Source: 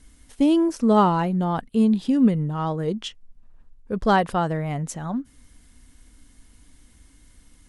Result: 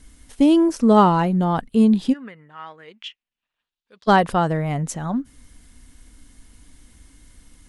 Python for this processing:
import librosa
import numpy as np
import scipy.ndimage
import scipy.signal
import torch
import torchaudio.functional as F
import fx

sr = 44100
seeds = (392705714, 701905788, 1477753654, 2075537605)

y = fx.bandpass_q(x, sr, hz=fx.line((2.12, 1600.0), (4.07, 4000.0)), q=2.6, at=(2.12, 4.07), fade=0.02)
y = y * 10.0 ** (3.5 / 20.0)